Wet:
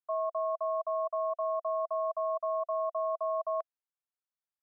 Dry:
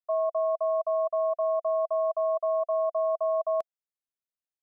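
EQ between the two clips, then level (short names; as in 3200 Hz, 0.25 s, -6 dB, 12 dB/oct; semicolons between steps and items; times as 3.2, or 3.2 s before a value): band-pass 1100 Hz, Q 1.6; 0.0 dB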